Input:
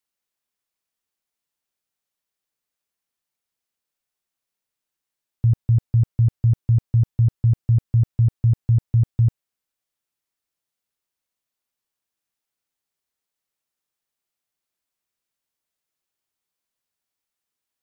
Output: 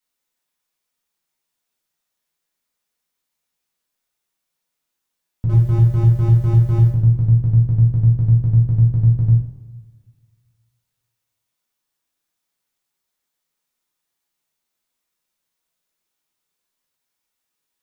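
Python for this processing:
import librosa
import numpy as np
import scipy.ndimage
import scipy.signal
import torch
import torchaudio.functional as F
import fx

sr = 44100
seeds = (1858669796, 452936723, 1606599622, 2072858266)

y = fx.power_curve(x, sr, exponent=0.7, at=(5.49, 6.9))
y = fx.rev_double_slope(y, sr, seeds[0], early_s=0.56, late_s=1.9, knee_db=-18, drr_db=-6.5)
y = y * 10.0 ** (-1.5 / 20.0)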